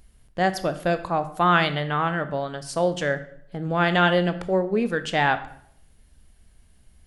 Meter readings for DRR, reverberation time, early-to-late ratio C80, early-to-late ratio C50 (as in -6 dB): 10.0 dB, 0.70 s, 16.5 dB, 13.5 dB